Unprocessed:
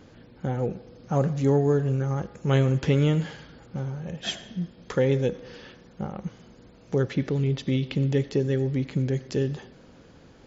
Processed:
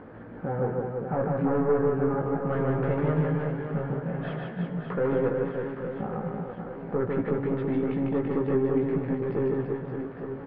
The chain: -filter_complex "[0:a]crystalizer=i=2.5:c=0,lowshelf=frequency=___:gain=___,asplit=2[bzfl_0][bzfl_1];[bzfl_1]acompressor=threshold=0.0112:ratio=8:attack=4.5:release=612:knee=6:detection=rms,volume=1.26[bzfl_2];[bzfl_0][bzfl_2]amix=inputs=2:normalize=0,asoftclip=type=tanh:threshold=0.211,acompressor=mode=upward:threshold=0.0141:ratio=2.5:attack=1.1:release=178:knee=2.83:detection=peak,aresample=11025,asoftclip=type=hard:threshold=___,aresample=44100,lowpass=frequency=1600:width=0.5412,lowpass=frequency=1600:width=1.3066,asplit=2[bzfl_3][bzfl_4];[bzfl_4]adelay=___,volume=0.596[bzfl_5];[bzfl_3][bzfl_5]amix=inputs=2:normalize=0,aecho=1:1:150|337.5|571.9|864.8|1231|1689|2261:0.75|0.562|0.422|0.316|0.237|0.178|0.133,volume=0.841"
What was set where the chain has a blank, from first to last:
150, -10, 0.0794, 18